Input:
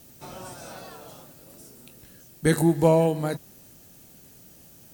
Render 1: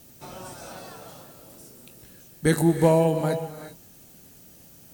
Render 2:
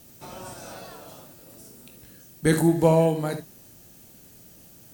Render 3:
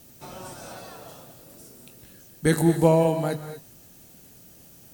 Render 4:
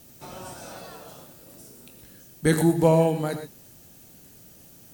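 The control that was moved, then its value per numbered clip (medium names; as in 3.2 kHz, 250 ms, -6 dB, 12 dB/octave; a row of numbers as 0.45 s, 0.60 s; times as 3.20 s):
gated-style reverb, gate: 410 ms, 90 ms, 260 ms, 140 ms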